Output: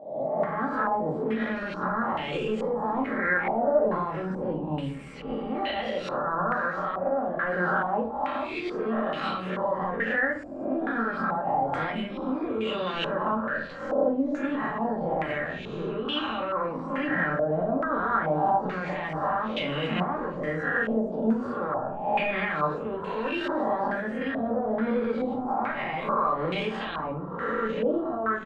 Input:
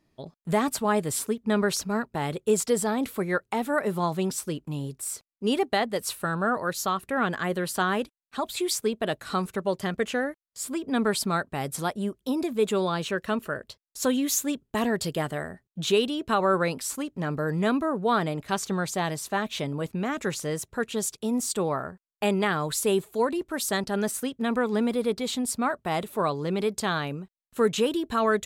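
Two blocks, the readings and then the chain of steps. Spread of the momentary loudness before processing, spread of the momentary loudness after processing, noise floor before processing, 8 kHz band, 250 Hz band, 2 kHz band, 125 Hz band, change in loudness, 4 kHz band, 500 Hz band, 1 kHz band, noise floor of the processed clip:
7 LU, 6 LU, -80 dBFS, under -30 dB, -2.0 dB, +2.5 dB, -3.0 dB, -0.5 dB, -4.5 dB, -1.0 dB, +2.5 dB, -35 dBFS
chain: spectral swells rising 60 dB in 0.69 s; de-esser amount 85%; HPF 240 Hz 6 dB/oct; notches 60/120/180/240/300/360 Hz; compressor, threshold -29 dBFS, peak gain reduction 10.5 dB; limiter -27 dBFS, peak gain reduction 9.5 dB; tremolo saw up 0.75 Hz, depth 35%; frequency-shifting echo 0.491 s, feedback 47%, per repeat -110 Hz, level -19.5 dB; shoebox room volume 320 m³, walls furnished, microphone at 2.2 m; stepped low-pass 2.3 Hz 680–2800 Hz; gain +2.5 dB

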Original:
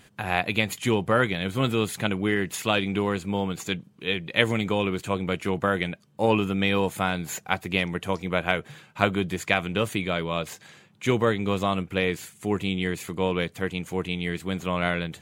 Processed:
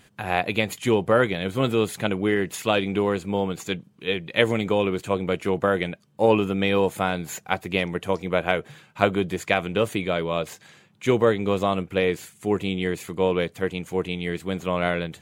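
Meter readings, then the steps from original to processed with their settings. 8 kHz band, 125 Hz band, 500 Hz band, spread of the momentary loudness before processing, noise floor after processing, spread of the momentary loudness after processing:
-1.0 dB, -0.5 dB, +4.5 dB, 7 LU, -57 dBFS, 8 LU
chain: dynamic EQ 490 Hz, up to +6 dB, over -36 dBFS, Q 0.89; gain -1 dB

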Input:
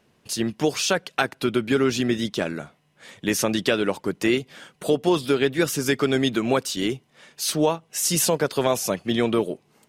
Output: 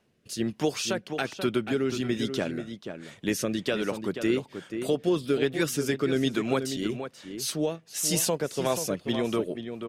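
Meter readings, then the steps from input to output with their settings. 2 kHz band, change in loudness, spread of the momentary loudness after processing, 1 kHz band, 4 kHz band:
-7.0 dB, -5.0 dB, 8 LU, -7.5 dB, -6.0 dB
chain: rotary speaker horn 1.2 Hz, later 5 Hz, at 8.43; outdoor echo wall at 83 m, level -8 dB; gain -3.5 dB

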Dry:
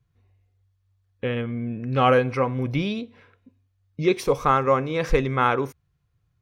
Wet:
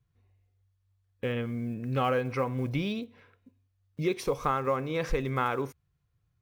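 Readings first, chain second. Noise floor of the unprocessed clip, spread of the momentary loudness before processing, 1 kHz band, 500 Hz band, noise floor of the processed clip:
-70 dBFS, 11 LU, -8.5 dB, -8.0 dB, -75 dBFS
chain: block floating point 7-bit; compressor 3:1, threshold -20 dBFS, peak gain reduction 5.5 dB; gain -4.5 dB

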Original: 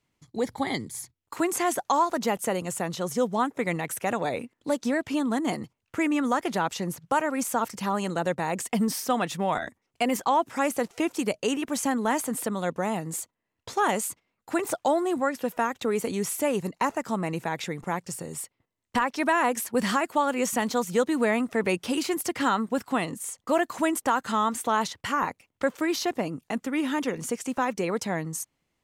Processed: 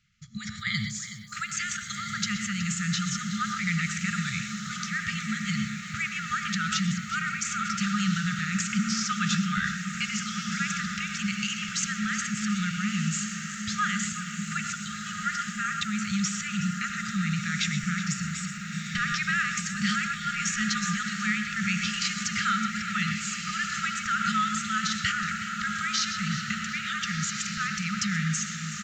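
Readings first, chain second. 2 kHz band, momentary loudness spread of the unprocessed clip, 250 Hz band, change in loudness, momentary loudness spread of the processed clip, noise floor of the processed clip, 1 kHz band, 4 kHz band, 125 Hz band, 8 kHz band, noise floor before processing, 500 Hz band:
+4.5 dB, 8 LU, -2.0 dB, -1.0 dB, 5 LU, -37 dBFS, -5.5 dB, +6.0 dB, +6.5 dB, +3.0 dB, -80 dBFS, under -40 dB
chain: non-linear reverb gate 0.15 s rising, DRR 9.5 dB; in parallel at -2 dB: negative-ratio compressor -32 dBFS, ratio -1; on the sum: diffused feedback echo 1.45 s, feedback 54%, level -6.5 dB; FFT band-reject 220–1200 Hz; downsampling 16000 Hz; lo-fi delay 0.371 s, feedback 55%, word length 9-bit, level -13 dB

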